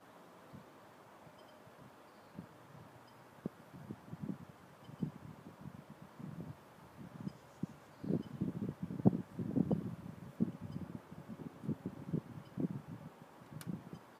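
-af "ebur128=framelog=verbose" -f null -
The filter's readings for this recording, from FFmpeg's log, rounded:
Integrated loudness:
  I:         -42.9 LUFS
  Threshold: -54.4 LUFS
Loudness range:
  LRA:        15.1 LU
  Threshold: -63.8 LUFS
  LRA low:   -54.3 LUFS
  LRA high:  -39.2 LUFS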